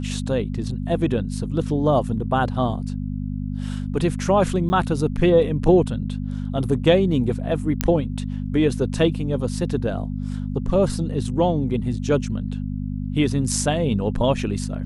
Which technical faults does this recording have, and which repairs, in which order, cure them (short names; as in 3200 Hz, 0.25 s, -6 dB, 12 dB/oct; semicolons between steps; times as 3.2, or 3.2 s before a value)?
hum 50 Hz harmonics 5 -27 dBFS
4.69–4.7 gap 10 ms
7.81 pop -3 dBFS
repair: de-click; de-hum 50 Hz, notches 5; interpolate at 4.69, 10 ms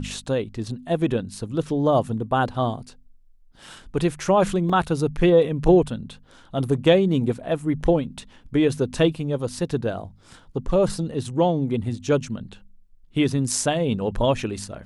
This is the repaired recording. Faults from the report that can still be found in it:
none